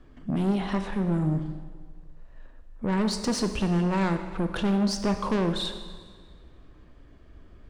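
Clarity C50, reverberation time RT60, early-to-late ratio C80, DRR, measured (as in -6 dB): 8.5 dB, 1.6 s, 10.0 dB, 7.0 dB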